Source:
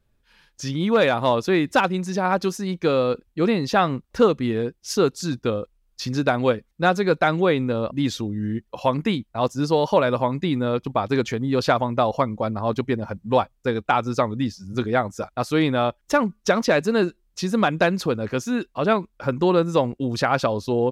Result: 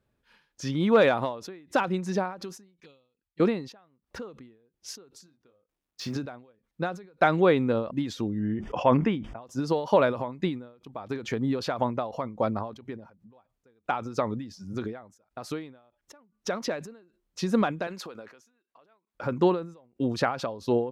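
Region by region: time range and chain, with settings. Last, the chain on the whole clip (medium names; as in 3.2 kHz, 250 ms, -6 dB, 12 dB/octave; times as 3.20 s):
2.80–3.40 s: touch-sensitive flanger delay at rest 4.3 ms, full sweep at -18.5 dBFS + amplifier tone stack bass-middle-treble 5-5-5
5.26–6.16 s: companding laws mixed up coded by A + bass shelf 450 Hz -3 dB + doubling 21 ms -6.5 dB
8.40–9.42 s: Butterworth band-stop 4.1 kHz, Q 3.8 + distance through air 130 m + decay stretcher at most 22 dB/s
17.87–19.15 s: high-pass 890 Hz 6 dB/octave + tape noise reduction on one side only decoder only
whole clip: high-pass 160 Hz 6 dB/octave; treble shelf 2.6 kHz -7.5 dB; endings held to a fixed fall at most 110 dB/s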